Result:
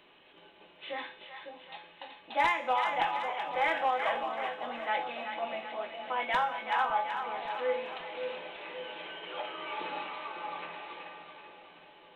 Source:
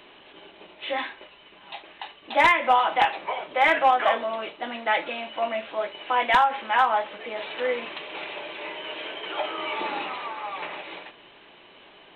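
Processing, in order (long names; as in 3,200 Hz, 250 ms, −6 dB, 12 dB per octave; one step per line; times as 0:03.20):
tuned comb filter 170 Hz, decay 0.71 s, harmonics odd, mix 80%
echo with a time of its own for lows and highs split 770 Hz, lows 554 ms, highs 379 ms, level −6.5 dB
level +3 dB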